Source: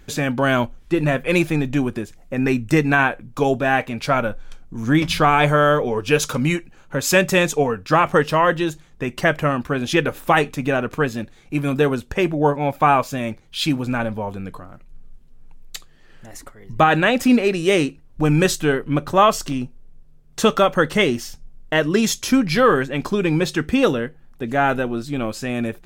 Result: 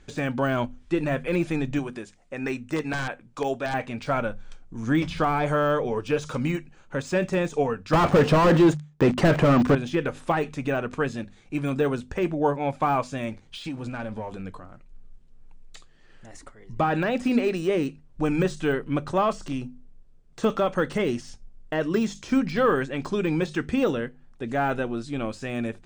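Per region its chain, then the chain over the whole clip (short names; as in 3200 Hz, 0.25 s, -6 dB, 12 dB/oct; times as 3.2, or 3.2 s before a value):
1.79–3.74 low shelf 260 Hz -11.5 dB + wrapped overs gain 10 dB
7.93–9.75 HPF 120 Hz 6 dB/oct + sample leveller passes 5
13.29–14.42 compressor 3:1, threshold -28 dBFS + sample leveller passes 1
whole clip: steep low-pass 9500 Hz 48 dB/oct; notches 50/100/150/200/250 Hz; de-esser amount 85%; gain -5 dB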